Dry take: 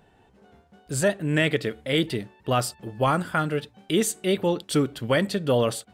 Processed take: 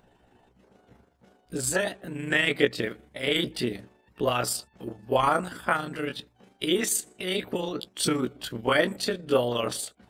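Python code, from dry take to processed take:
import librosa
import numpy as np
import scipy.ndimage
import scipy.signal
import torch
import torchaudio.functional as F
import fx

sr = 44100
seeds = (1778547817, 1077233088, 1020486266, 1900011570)

y = fx.stretch_grains(x, sr, factor=1.7, grain_ms=80.0)
y = fx.hpss(y, sr, part='harmonic', gain_db=-14)
y = y * 10.0 ** (4.5 / 20.0)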